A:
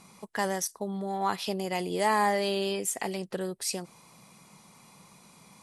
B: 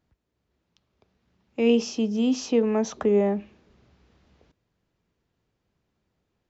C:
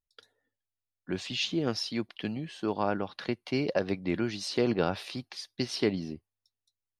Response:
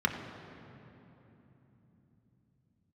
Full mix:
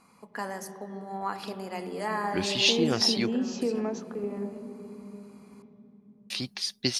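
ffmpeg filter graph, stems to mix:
-filter_complex "[0:a]volume=-7dB,asplit=3[link_01][link_02][link_03];[link_02]volume=-10.5dB[link_04];[1:a]adelay=1100,volume=-3.5dB,asplit=2[link_05][link_06];[link_06]volume=-21.5dB[link_07];[2:a]highshelf=frequency=2500:gain=10,adelay=1250,volume=2dB,asplit=3[link_08][link_09][link_10];[link_08]atrim=end=3.32,asetpts=PTS-STARTPTS,afade=type=out:start_time=3.316:duration=0.004:curve=hsin[link_11];[link_09]atrim=start=3.32:end=6.3,asetpts=PTS-STARTPTS,volume=0[link_12];[link_10]atrim=start=6.3,asetpts=PTS-STARTPTS,afade=type=in:duration=0.004:curve=hsin[link_13];[link_11][link_12][link_13]concat=n=3:v=0:a=1[link_14];[link_03]apad=whole_len=334746[link_15];[link_05][link_15]sidechaingate=range=-33dB:threshold=-59dB:ratio=16:detection=peak[link_16];[link_01][link_16]amix=inputs=2:normalize=0,acompressor=threshold=-29dB:ratio=4,volume=0dB[link_17];[3:a]atrim=start_sample=2205[link_18];[link_04][link_07]amix=inputs=2:normalize=0[link_19];[link_19][link_18]afir=irnorm=-1:irlink=0[link_20];[link_14][link_17][link_20]amix=inputs=3:normalize=0"

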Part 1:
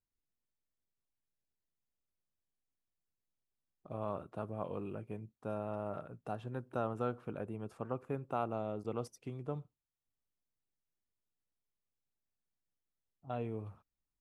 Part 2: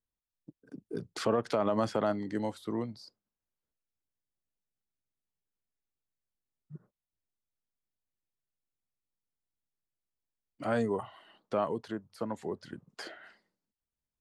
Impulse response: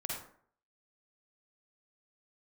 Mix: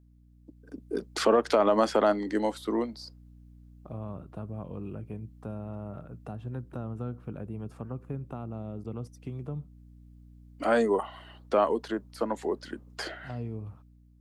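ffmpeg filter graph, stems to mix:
-filter_complex "[0:a]acrossover=split=250[link_01][link_02];[link_02]acompressor=threshold=-52dB:ratio=4[link_03];[link_01][link_03]amix=inputs=2:normalize=0,aeval=exprs='val(0)+0.00126*(sin(2*PI*60*n/s)+sin(2*PI*2*60*n/s)/2+sin(2*PI*3*60*n/s)/3+sin(2*PI*4*60*n/s)/4+sin(2*PI*5*60*n/s)/5)':channel_layout=same,volume=1dB[link_04];[1:a]highpass=frequency=240:width=0.5412,highpass=frequency=240:width=1.3066,volume=0.5dB[link_05];[link_04][link_05]amix=inputs=2:normalize=0,dynaudnorm=framelen=140:gausssize=9:maxgain=6.5dB"

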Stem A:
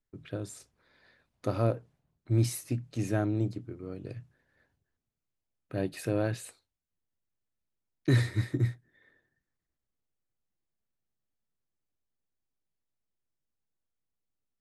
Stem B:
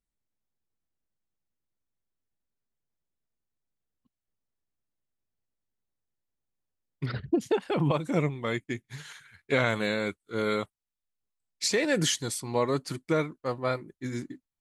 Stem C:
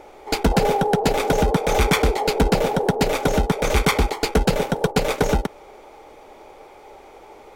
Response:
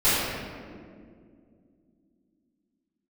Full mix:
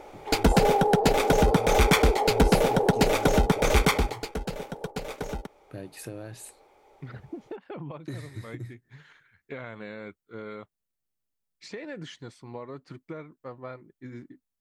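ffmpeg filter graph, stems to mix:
-filter_complex "[0:a]volume=-3dB[link_01];[1:a]lowpass=2200,volume=-7dB[link_02];[2:a]volume=-2dB,afade=type=out:start_time=3.76:duration=0.52:silence=0.237137[link_03];[link_01][link_02]amix=inputs=2:normalize=0,highshelf=frequency=6200:gain=8.5,acompressor=threshold=-35dB:ratio=6,volume=0dB[link_04];[link_03][link_04]amix=inputs=2:normalize=0"

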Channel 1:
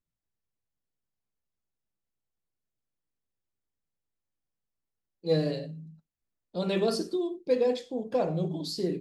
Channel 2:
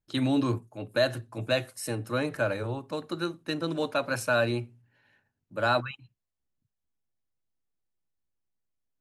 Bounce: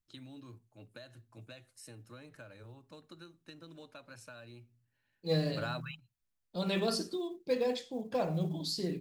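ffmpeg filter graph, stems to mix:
ffmpeg -i stem1.wav -i stem2.wav -filter_complex "[0:a]equalizer=frequency=390:width=0.8:gain=-7.5,volume=0dB,asplit=2[link_01][link_02];[1:a]lowpass=9200,equalizer=frequency=650:width=0.35:gain=-7,acompressor=threshold=-37dB:ratio=6,volume=1dB[link_03];[link_02]apad=whole_len=397228[link_04];[link_03][link_04]sidechaingate=range=-12dB:threshold=-54dB:ratio=16:detection=peak[link_05];[link_01][link_05]amix=inputs=2:normalize=0,acrusher=bits=9:mode=log:mix=0:aa=0.000001" out.wav

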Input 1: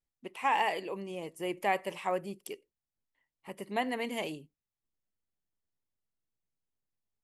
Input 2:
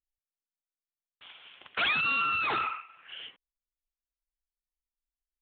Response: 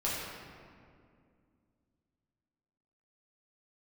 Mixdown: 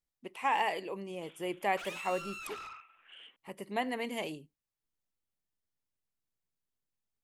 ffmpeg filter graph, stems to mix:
-filter_complex "[0:a]volume=-1.5dB[link_01];[1:a]highpass=frequency=200:width=0.5412,highpass=frequency=200:width=1.3066,asoftclip=type=tanh:threshold=-33.5dB,volume=-9dB[link_02];[link_01][link_02]amix=inputs=2:normalize=0"

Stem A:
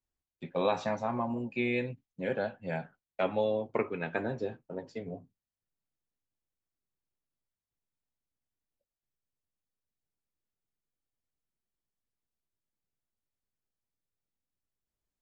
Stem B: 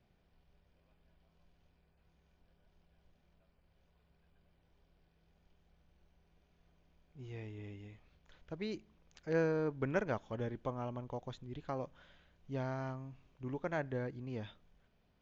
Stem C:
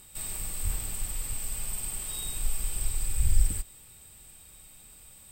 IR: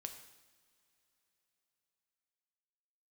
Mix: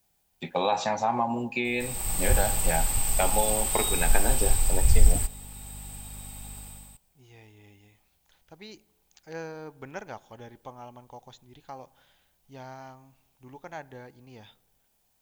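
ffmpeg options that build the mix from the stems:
-filter_complex "[0:a]volume=2dB,asplit=2[link_01][link_02];[link_02]volume=-7dB[link_03];[1:a]volume=-10dB,asplit=2[link_04][link_05];[link_05]volume=-5.5dB[link_06];[2:a]aeval=exprs='val(0)+0.00316*(sin(2*PI*50*n/s)+sin(2*PI*2*50*n/s)/2+sin(2*PI*3*50*n/s)/3+sin(2*PI*4*50*n/s)/4+sin(2*PI*5*50*n/s)/5)':channel_layout=same,dynaudnorm=framelen=110:gausssize=7:maxgain=10.5dB,adelay=1650,volume=-4.5dB,asplit=2[link_07][link_08];[link_08]volume=-10dB[link_09];[link_01][link_04]amix=inputs=2:normalize=0,crystalizer=i=7.5:c=0,acompressor=threshold=-28dB:ratio=6,volume=0dB[link_10];[3:a]atrim=start_sample=2205[link_11];[link_03][link_06][link_09]amix=inputs=3:normalize=0[link_12];[link_12][link_11]afir=irnorm=-1:irlink=0[link_13];[link_07][link_10][link_13]amix=inputs=3:normalize=0,equalizer=frequency=820:width=3.8:gain=11"

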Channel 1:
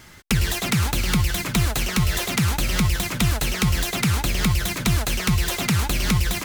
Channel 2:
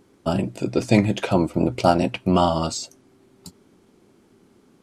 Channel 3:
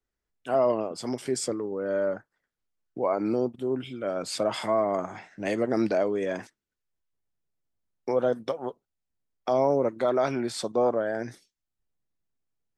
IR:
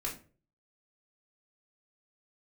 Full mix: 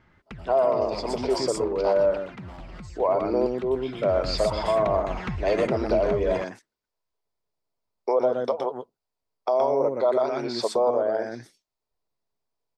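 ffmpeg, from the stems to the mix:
-filter_complex "[0:a]lowpass=1800,acompressor=threshold=-27dB:ratio=6,volume=-0.5dB,afade=type=in:start_time=3.97:duration=0.34:silence=0.281838[link_01];[1:a]volume=16dB,asoftclip=hard,volume=-16dB,volume=-11.5dB,asplit=2[link_02][link_03];[link_03]volume=-14dB[link_04];[2:a]volume=2.5dB,asplit=3[link_05][link_06][link_07];[link_06]volume=-4.5dB[link_08];[link_07]apad=whole_len=212791[link_09];[link_02][link_09]sidechaingate=range=-33dB:threshold=-42dB:ratio=16:detection=peak[link_10];[link_10][link_05]amix=inputs=2:normalize=0,highpass=420,equalizer=frequency=430:width_type=q:width=4:gain=8,equalizer=frequency=640:width_type=q:width=4:gain=7,equalizer=frequency=970:width_type=q:width=4:gain=9,equalizer=frequency=1700:width_type=q:width=4:gain=-10,equalizer=frequency=3000:width_type=q:width=4:gain=-7,equalizer=frequency=4800:width_type=q:width=4:gain=7,lowpass=frequency=5100:width=0.5412,lowpass=frequency=5100:width=1.3066,alimiter=limit=-11dB:level=0:latency=1:release=135,volume=0dB[link_11];[link_04][link_08]amix=inputs=2:normalize=0,aecho=0:1:120:1[link_12];[link_01][link_11][link_12]amix=inputs=3:normalize=0,alimiter=limit=-13dB:level=0:latency=1:release=470"

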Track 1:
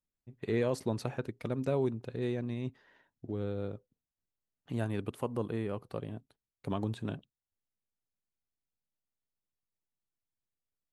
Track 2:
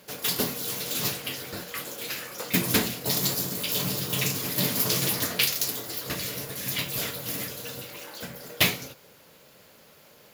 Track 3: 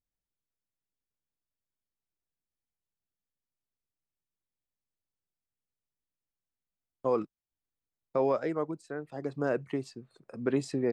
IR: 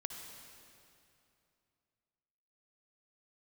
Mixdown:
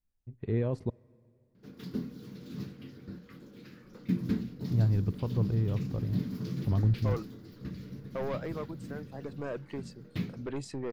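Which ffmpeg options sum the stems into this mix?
-filter_complex "[0:a]aemphasis=mode=reproduction:type=riaa,volume=-6dB,asplit=3[link_01][link_02][link_03];[link_01]atrim=end=0.9,asetpts=PTS-STARTPTS,afade=type=out:start_time=0.896:duration=0.004:curve=hsin[link_04];[link_02]atrim=start=0.9:end=3.83,asetpts=PTS-STARTPTS,volume=0[link_05];[link_03]atrim=start=3.83,asetpts=PTS-STARTPTS,afade=type=in:duration=0.004:curve=hsin[link_06];[link_04][link_05][link_06]concat=n=3:v=0:a=1,asplit=2[link_07][link_08];[link_08]volume=-20.5dB[link_09];[1:a]highshelf=frequency=6300:width_type=q:width=1.5:gain=-10.5,acontrast=63,firequalizer=gain_entry='entry(110,0);entry(200,12);entry(640,-15);entry(1400,-10);entry(2800,-19);entry(6600,-17)':delay=0.05:min_phase=1,adelay=1550,volume=-15.5dB[link_10];[2:a]asoftclip=type=tanh:threshold=-25.5dB,volume=-3dB[link_11];[3:a]atrim=start_sample=2205[link_12];[link_09][link_12]afir=irnorm=-1:irlink=0[link_13];[link_07][link_10][link_11][link_13]amix=inputs=4:normalize=0,asubboost=boost=3.5:cutoff=110"

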